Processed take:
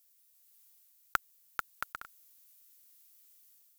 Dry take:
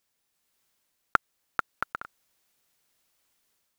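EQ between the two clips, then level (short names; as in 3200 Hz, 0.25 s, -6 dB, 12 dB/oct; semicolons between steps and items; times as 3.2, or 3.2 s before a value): pre-emphasis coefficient 0.9; low shelf 77 Hz +10 dB; bell 14000 Hz +6 dB 0.29 oct; +6.5 dB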